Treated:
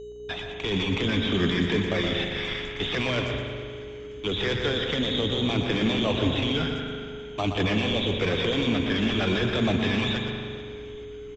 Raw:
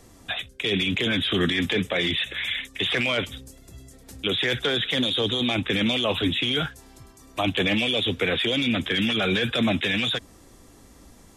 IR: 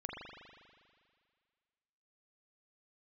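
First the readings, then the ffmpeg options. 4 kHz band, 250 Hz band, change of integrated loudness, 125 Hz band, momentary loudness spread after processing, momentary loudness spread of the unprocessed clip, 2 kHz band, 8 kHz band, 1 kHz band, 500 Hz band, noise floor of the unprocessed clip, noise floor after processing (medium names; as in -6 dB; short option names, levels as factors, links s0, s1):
-4.5 dB, +0.5 dB, -2.5 dB, +3.0 dB, 12 LU, 6 LU, -4.0 dB, -3.0 dB, 0.0 dB, +0.5 dB, -51 dBFS, -39 dBFS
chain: -filter_complex "[0:a]agate=range=0.0631:threshold=0.01:ratio=16:detection=peak,lowshelf=f=71:g=11.5,aeval=exprs='val(0)+0.02*sin(2*PI*420*n/s)':c=same,asplit=2[s0][s1];[s1]acrusher=samples=13:mix=1:aa=0.000001,volume=0.447[s2];[s0][s2]amix=inputs=2:normalize=0,aeval=exprs='val(0)+0.00631*(sin(2*PI*60*n/s)+sin(2*PI*2*60*n/s)/2+sin(2*PI*3*60*n/s)/3+sin(2*PI*4*60*n/s)/4+sin(2*PI*5*60*n/s)/5)':c=same,asplit=6[s3][s4][s5][s6][s7][s8];[s4]adelay=434,afreqshift=-73,volume=0.0891[s9];[s5]adelay=868,afreqshift=-146,volume=0.0543[s10];[s6]adelay=1302,afreqshift=-219,volume=0.0331[s11];[s7]adelay=1736,afreqshift=-292,volume=0.0202[s12];[s8]adelay=2170,afreqshift=-365,volume=0.0123[s13];[s3][s9][s10][s11][s12][s13]amix=inputs=6:normalize=0,asplit=2[s14][s15];[1:a]atrim=start_sample=2205,adelay=120[s16];[s15][s16]afir=irnorm=-1:irlink=0,volume=0.708[s17];[s14][s17]amix=inputs=2:normalize=0,aresample=16000,aresample=44100,volume=0.501"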